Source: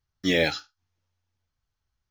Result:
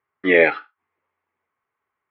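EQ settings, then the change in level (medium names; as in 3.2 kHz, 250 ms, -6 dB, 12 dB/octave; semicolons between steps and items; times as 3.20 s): distance through air 210 m; cabinet simulation 340–2500 Hz, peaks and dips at 410 Hz +7 dB, 1.1 kHz +9 dB, 2.1 kHz +8 dB; +8.0 dB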